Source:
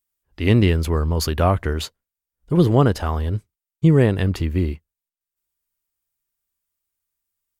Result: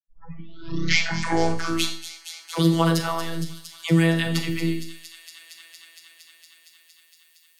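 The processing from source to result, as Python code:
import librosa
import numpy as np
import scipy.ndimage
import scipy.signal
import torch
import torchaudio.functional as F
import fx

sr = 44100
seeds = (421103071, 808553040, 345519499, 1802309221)

y = fx.tape_start_head(x, sr, length_s=2.01)
y = fx.dispersion(y, sr, late='lows', ms=81.0, hz=650.0)
y = fx.noise_reduce_blind(y, sr, reduce_db=23)
y = fx.tilt_shelf(y, sr, db=-6.0, hz=1200.0)
y = fx.echo_wet_highpass(y, sr, ms=231, feedback_pct=78, hz=4600.0, wet_db=-10)
y = fx.robotise(y, sr, hz=165.0)
y = fx.rev_schroeder(y, sr, rt60_s=0.44, comb_ms=27, drr_db=6.5)
y = fx.band_squash(y, sr, depth_pct=40)
y = F.gain(torch.from_numpy(y), 3.5).numpy()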